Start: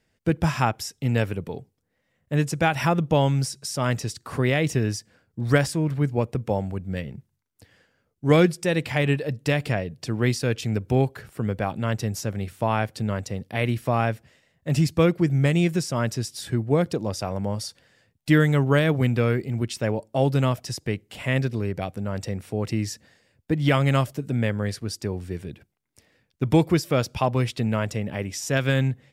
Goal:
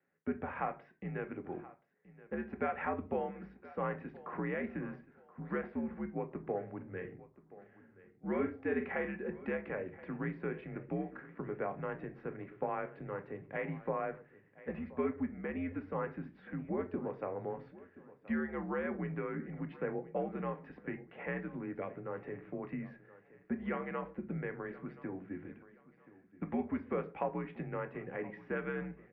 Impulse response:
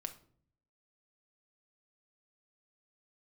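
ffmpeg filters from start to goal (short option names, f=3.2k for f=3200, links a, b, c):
-filter_complex "[0:a]acompressor=threshold=-23dB:ratio=6,asettb=1/sr,asplit=3[a][b][c];[a]atrim=end=6.764[d];[b]atrim=start=6.76:end=9.08,asetpts=PTS-STARTPTS,afade=t=in:d=0.004:c=qsin,afade=t=out:st=2.316:d=0.004:c=qsin,asplit=2[e][f];[f]adelay=43,volume=-8dB[g];[e][g]amix=inputs=2:normalize=0,atrim=end_sample=102312[h];[c]atrim=start=9.076[i];[d][h]acrossfade=d=0.004:c1=hsin:c2=qsin[j];[j][i]acrossfade=d=0.004:c1=qsin:c2=hsin,aecho=1:1:1026|2052|3078:0.119|0.0368|0.0114[k];[1:a]atrim=start_sample=2205,afade=t=out:st=0.35:d=0.01,atrim=end_sample=15876,asetrate=70560,aresample=44100[l];[k][l]afir=irnorm=-1:irlink=0,highpass=f=270:t=q:w=0.5412,highpass=f=270:t=q:w=1.307,lowpass=f=2.2k:t=q:w=0.5176,lowpass=f=2.2k:t=q:w=0.7071,lowpass=f=2.2k:t=q:w=1.932,afreqshift=-82"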